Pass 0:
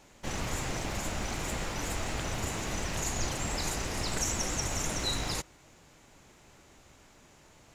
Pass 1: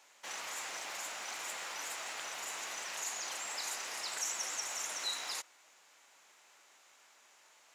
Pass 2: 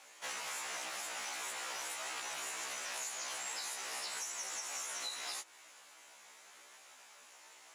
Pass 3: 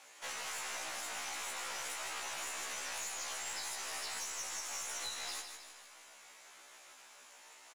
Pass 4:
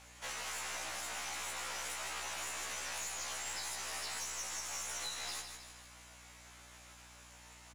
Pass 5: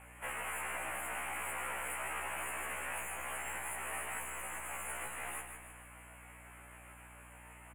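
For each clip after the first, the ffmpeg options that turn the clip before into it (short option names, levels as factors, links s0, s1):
-filter_complex "[0:a]asplit=2[s0][s1];[s1]alimiter=level_in=1.5:limit=0.0631:level=0:latency=1,volume=0.668,volume=0.794[s2];[s0][s2]amix=inputs=2:normalize=0,highpass=890,volume=0.447"
-af "equalizer=f=10000:w=7.4:g=10,acompressor=threshold=0.00708:ratio=16,afftfilt=real='re*1.73*eq(mod(b,3),0)':imag='im*1.73*eq(mod(b,3),0)':win_size=2048:overlap=0.75,volume=2.37"
-af "aeval=exprs='(tanh(50.1*val(0)+0.35)-tanh(0.35))/50.1':c=same,aecho=1:1:156|312|468|624|780|936:0.422|0.215|0.11|0.0559|0.0285|0.0145,volume=1.12"
-af "aeval=exprs='val(0)+0.000891*(sin(2*PI*60*n/s)+sin(2*PI*2*60*n/s)/2+sin(2*PI*3*60*n/s)/3+sin(2*PI*4*60*n/s)/4+sin(2*PI*5*60*n/s)/5)':c=same"
-af "asuperstop=centerf=4900:order=8:qfactor=0.85,volume=1.58"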